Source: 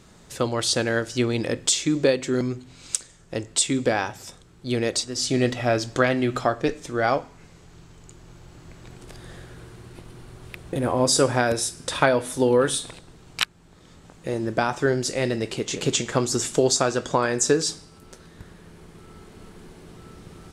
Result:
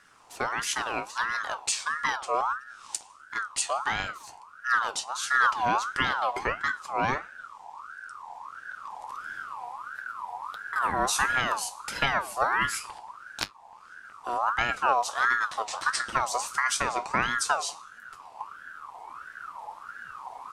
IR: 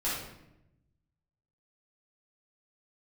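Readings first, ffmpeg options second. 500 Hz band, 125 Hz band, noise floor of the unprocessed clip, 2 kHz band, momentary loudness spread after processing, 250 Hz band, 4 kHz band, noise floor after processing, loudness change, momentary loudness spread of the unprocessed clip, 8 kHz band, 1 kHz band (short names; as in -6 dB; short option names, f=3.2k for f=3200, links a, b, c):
-13.5 dB, -16.0 dB, -51 dBFS, +2.5 dB, 18 LU, -17.0 dB, -6.0 dB, -51 dBFS, -5.0 dB, 17 LU, -7.0 dB, +3.0 dB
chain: -af "asubboost=boost=5:cutoff=170,flanger=delay=7.3:depth=3.4:regen=63:speed=0.4:shape=triangular,aeval=exprs='val(0)*sin(2*PI*1200*n/s+1200*0.3/1.5*sin(2*PI*1.5*n/s))':c=same"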